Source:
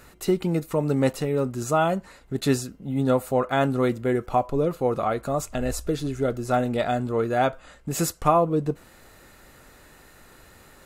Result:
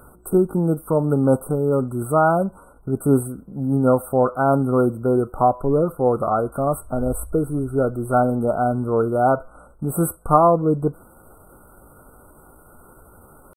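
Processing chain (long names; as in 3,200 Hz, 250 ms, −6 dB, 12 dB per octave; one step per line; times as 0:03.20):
tempo change 0.8×
brick-wall band-stop 1,500–8,000 Hz
level +4.5 dB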